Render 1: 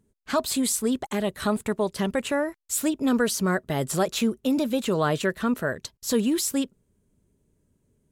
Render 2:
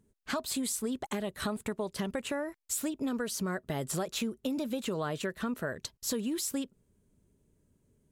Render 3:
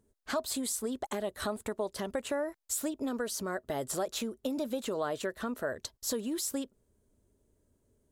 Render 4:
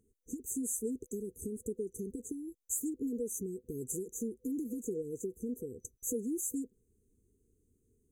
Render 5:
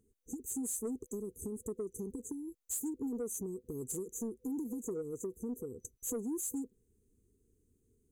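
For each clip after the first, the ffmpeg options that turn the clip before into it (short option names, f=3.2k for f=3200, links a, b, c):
-af "acompressor=threshold=-29dB:ratio=6,volume=-1.5dB"
-af "equalizer=f=160:t=o:w=0.67:g=-11,equalizer=f=630:t=o:w=0.67:g=4,equalizer=f=2.5k:t=o:w=0.67:g=-5"
-af "afftfilt=real='re*(1-between(b*sr/4096,500,6000))':imag='im*(1-between(b*sr/4096,500,6000))':win_size=4096:overlap=0.75,volume=-1dB"
-af "asoftclip=type=tanh:threshold=-30dB"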